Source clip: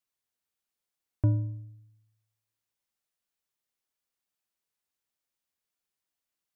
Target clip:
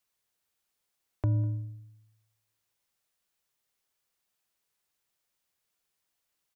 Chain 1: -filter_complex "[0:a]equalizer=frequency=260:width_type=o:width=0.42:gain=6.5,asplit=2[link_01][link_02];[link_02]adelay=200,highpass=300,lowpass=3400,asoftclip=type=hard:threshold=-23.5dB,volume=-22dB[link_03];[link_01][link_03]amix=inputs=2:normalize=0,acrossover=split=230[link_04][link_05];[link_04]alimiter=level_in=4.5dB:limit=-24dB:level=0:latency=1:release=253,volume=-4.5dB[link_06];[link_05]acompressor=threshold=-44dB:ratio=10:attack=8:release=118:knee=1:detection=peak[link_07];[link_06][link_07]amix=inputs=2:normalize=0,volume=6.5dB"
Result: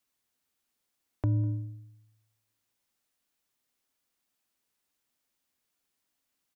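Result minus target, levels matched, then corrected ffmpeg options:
250 Hz band +3.0 dB
-filter_complex "[0:a]equalizer=frequency=260:width_type=o:width=0.42:gain=-4.5,asplit=2[link_01][link_02];[link_02]adelay=200,highpass=300,lowpass=3400,asoftclip=type=hard:threshold=-23.5dB,volume=-22dB[link_03];[link_01][link_03]amix=inputs=2:normalize=0,acrossover=split=230[link_04][link_05];[link_04]alimiter=level_in=4.5dB:limit=-24dB:level=0:latency=1:release=253,volume=-4.5dB[link_06];[link_05]acompressor=threshold=-44dB:ratio=10:attack=8:release=118:knee=1:detection=peak[link_07];[link_06][link_07]amix=inputs=2:normalize=0,volume=6.5dB"

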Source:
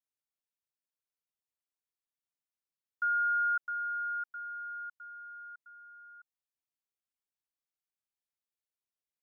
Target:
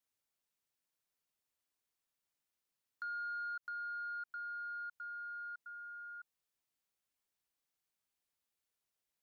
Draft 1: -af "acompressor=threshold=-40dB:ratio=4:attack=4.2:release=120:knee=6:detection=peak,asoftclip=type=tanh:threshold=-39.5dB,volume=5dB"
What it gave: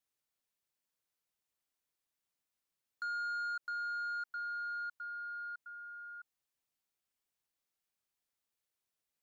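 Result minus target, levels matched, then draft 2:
downward compressor: peak gain reduction −5.5 dB
-af "acompressor=threshold=-47.5dB:ratio=4:attack=4.2:release=120:knee=6:detection=peak,asoftclip=type=tanh:threshold=-39.5dB,volume=5dB"

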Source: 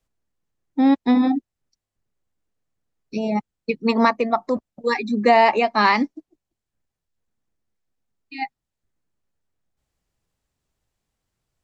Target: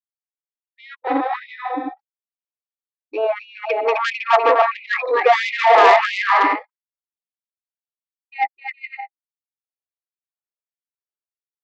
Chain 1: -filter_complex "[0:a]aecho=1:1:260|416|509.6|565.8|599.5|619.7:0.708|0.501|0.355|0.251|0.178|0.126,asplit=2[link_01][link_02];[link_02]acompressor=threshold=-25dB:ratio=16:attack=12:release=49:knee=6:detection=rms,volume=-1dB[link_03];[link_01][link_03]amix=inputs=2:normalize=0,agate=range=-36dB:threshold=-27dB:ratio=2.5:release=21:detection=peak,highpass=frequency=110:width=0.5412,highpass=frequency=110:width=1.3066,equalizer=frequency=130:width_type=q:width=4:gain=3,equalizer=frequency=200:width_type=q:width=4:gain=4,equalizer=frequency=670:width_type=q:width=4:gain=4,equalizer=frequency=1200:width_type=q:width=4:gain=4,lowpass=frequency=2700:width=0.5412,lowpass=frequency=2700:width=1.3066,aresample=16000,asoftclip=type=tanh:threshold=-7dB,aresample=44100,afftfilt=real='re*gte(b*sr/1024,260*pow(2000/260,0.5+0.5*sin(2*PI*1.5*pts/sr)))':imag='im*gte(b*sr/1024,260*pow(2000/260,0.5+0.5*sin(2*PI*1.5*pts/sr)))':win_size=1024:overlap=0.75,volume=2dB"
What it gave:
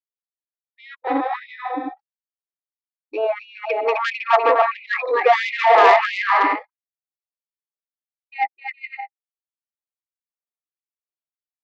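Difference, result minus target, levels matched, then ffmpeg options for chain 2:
downward compressor: peak gain reduction +8 dB
-filter_complex "[0:a]aecho=1:1:260|416|509.6|565.8|599.5|619.7:0.708|0.501|0.355|0.251|0.178|0.126,asplit=2[link_01][link_02];[link_02]acompressor=threshold=-16.5dB:ratio=16:attack=12:release=49:knee=6:detection=rms,volume=-1dB[link_03];[link_01][link_03]amix=inputs=2:normalize=0,agate=range=-36dB:threshold=-27dB:ratio=2.5:release=21:detection=peak,highpass=frequency=110:width=0.5412,highpass=frequency=110:width=1.3066,equalizer=frequency=130:width_type=q:width=4:gain=3,equalizer=frequency=200:width_type=q:width=4:gain=4,equalizer=frequency=670:width_type=q:width=4:gain=4,equalizer=frequency=1200:width_type=q:width=4:gain=4,lowpass=frequency=2700:width=0.5412,lowpass=frequency=2700:width=1.3066,aresample=16000,asoftclip=type=tanh:threshold=-7dB,aresample=44100,afftfilt=real='re*gte(b*sr/1024,260*pow(2000/260,0.5+0.5*sin(2*PI*1.5*pts/sr)))':imag='im*gte(b*sr/1024,260*pow(2000/260,0.5+0.5*sin(2*PI*1.5*pts/sr)))':win_size=1024:overlap=0.75,volume=2dB"

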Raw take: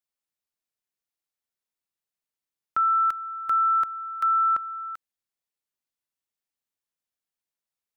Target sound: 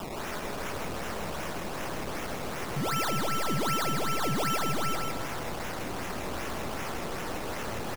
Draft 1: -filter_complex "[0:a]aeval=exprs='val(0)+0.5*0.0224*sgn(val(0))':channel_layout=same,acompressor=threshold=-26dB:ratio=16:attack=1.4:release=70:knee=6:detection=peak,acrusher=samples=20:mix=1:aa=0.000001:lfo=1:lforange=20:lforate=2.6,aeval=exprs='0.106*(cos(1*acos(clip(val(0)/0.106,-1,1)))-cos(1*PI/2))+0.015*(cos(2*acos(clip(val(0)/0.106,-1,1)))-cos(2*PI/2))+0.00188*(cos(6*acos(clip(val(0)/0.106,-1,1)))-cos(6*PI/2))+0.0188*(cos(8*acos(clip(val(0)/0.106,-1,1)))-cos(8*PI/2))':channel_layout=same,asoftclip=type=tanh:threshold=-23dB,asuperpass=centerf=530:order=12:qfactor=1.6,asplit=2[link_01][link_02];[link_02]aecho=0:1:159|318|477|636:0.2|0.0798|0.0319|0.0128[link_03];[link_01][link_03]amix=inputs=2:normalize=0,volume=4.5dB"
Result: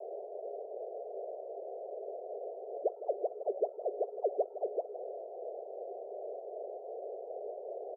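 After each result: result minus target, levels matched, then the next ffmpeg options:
500 Hz band +8.0 dB; soft clipping: distortion −12 dB; echo-to-direct −10.5 dB
-filter_complex "[0:a]aeval=exprs='val(0)+0.5*0.0224*sgn(val(0))':channel_layout=same,acompressor=threshold=-26dB:ratio=16:attack=1.4:release=70:knee=6:detection=peak,acrusher=samples=20:mix=1:aa=0.000001:lfo=1:lforange=20:lforate=2.6,aeval=exprs='0.106*(cos(1*acos(clip(val(0)/0.106,-1,1)))-cos(1*PI/2))+0.015*(cos(2*acos(clip(val(0)/0.106,-1,1)))-cos(2*PI/2))+0.00188*(cos(6*acos(clip(val(0)/0.106,-1,1)))-cos(6*PI/2))+0.0188*(cos(8*acos(clip(val(0)/0.106,-1,1)))-cos(8*PI/2))':channel_layout=same,asoftclip=type=tanh:threshold=-23dB,asplit=2[link_01][link_02];[link_02]aecho=0:1:159|318|477|636:0.2|0.0798|0.0319|0.0128[link_03];[link_01][link_03]amix=inputs=2:normalize=0,volume=4.5dB"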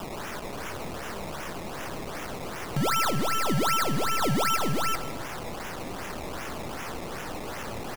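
soft clipping: distortion −12 dB; echo-to-direct −10.5 dB
-filter_complex "[0:a]aeval=exprs='val(0)+0.5*0.0224*sgn(val(0))':channel_layout=same,acompressor=threshold=-26dB:ratio=16:attack=1.4:release=70:knee=6:detection=peak,acrusher=samples=20:mix=1:aa=0.000001:lfo=1:lforange=20:lforate=2.6,aeval=exprs='0.106*(cos(1*acos(clip(val(0)/0.106,-1,1)))-cos(1*PI/2))+0.015*(cos(2*acos(clip(val(0)/0.106,-1,1)))-cos(2*PI/2))+0.00188*(cos(6*acos(clip(val(0)/0.106,-1,1)))-cos(6*PI/2))+0.0188*(cos(8*acos(clip(val(0)/0.106,-1,1)))-cos(8*PI/2))':channel_layout=same,asoftclip=type=tanh:threshold=-32dB,asplit=2[link_01][link_02];[link_02]aecho=0:1:159|318|477|636:0.2|0.0798|0.0319|0.0128[link_03];[link_01][link_03]amix=inputs=2:normalize=0,volume=4.5dB"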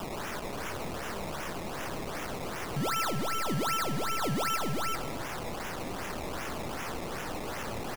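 echo-to-direct −10.5 dB
-filter_complex "[0:a]aeval=exprs='val(0)+0.5*0.0224*sgn(val(0))':channel_layout=same,acompressor=threshold=-26dB:ratio=16:attack=1.4:release=70:knee=6:detection=peak,acrusher=samples=20:mix=1:aa=0.000001:lfo=1:lforange=20:lforate=2.6,aeval=exprs='0.106*(cos(1*acos(clip(val(0)/0.106,-1,1)))-cos(1*PI/2))+0.015*(cos(2*acos(clip(val(0)/0.106,-1,1)))-cos(2*PI/2))+0.00188*(cos(6*acos(clip(val(0)/0.106,-1,1)))-cos(6*PI/2))+0.0188*(cos(8*acos(clip(val(0)/0.106,-1,1)))-cos(8*PI/2))':channel_layout=same,asoftclip=type=tanh:threshold=-32dB,asplit=2[link_01][link_02];[link_02]aecho=0:1:159|318|477|636|795:0.668|0.267|0.107|0.0428|0.0171[link_03];[link_01][link_03]amix=inputs=2:normalize=0,volume=4.5dB"

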